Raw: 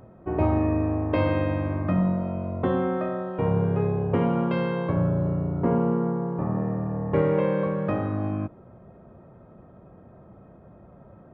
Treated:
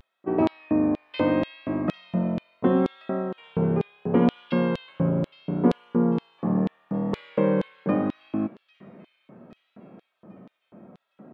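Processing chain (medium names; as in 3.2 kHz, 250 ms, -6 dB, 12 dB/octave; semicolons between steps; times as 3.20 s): feedback echo behind a high-pass 807 ms, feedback 53%, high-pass 2.7 kHz, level -12 dB; LFO high-pass square 2.1 Hz 220–3500 Hz; vibrato 0.74 Hz 51 cents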